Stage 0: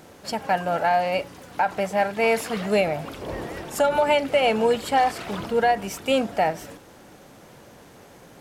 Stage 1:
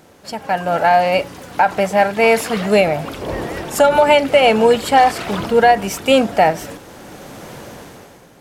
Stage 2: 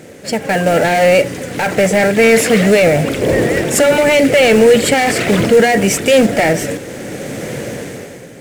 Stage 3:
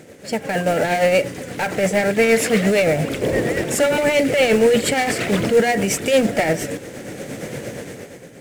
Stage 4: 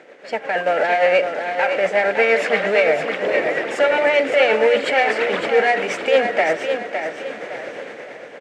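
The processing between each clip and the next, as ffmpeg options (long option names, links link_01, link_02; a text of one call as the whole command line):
ffmpeg -i in.wav -af "dynaudnorm=framelen=100:gausssize=13:maxgain=14dB" out.wav
ffmpeg -i in.wav -af "acrusher=bits=4:mode=log:mix=0:aa=0.000001,apsyclip=16.5dB,equalizer=frequency=125:width_type=o:width=1:gain=9,equalizer=frequency=250:width_type=o:width=1:gain=6,equalizer=frequency=500:width_type=o:width=1:gain=11,equalizer=frequency=1000:width_type=o:width=1:gain=-8,equalizer=frequency=2000:width_type=o:width=1:gain=11,equalizer=frequency=8000:width_type=o:width=1:gain=9,volume=-14dB" out.wav
ffmpeg -i in.wav -af "tremolo=f=8.6:d=0.42,volume=-4.5dB" out.wav
ffmpeg -i in.wav -af "highpass=590,lowpass=2500,aecho=1:1:560|1120|1680|2240:0.447|0.156|0.0547|0.0192,volume=4dB" out.wav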